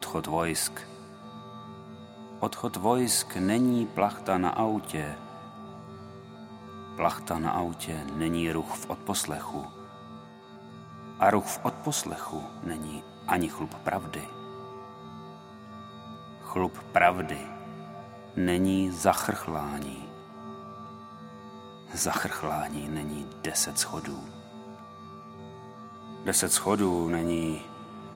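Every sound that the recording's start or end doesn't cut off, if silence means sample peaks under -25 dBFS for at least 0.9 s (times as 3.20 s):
2.42–5.08 s
6.99–9.60 s
11.22–14.19 s
16.52–17.34 s
18.38–19.82 s
21.96–24.05 s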